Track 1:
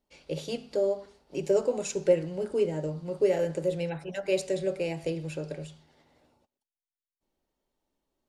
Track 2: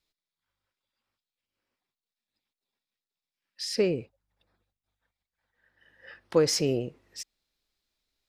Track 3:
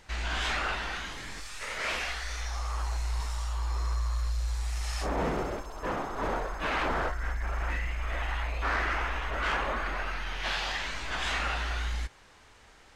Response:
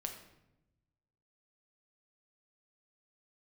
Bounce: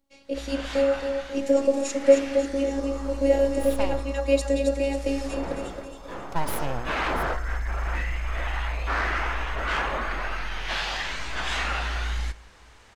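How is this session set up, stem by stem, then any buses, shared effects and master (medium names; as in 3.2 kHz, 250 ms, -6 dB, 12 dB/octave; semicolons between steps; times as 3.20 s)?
+2.0 dB, 0.00 s, no send, echo send -6.5 dB, bass shelf 480 Hz +6 dB; robot voice 275 Hz
-5.0 dB, 0.00 s, no send, no echo send, full-wave rectifier
-2.0 dB, 0.25 s, send -9.5 dB, no echo send, auto duck -14 dB, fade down 0.25 s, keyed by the first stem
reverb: on, RT60 0.90 s, pre-delay 6 ms
echo: feedback delay 271 ms, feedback 47%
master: level rider gain up to 3 dB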